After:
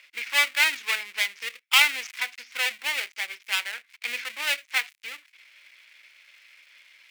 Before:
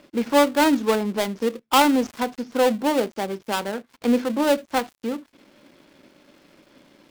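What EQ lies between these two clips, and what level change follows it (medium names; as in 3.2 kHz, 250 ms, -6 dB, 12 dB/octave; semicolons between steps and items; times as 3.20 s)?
resonant high-pass 2.2 kHz, resonance Q 3.7; 0.0 dB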